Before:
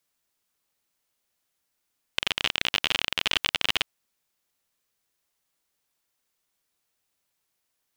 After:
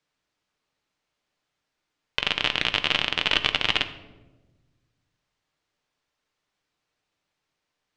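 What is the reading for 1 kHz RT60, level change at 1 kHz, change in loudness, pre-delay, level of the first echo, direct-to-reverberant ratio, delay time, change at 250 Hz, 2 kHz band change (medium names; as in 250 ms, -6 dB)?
0.95 s, +4.0 dB, +2.0 dB, 7 ms, no echo, 8.0 dB, no echo, +5.0 dB, +3.0 dB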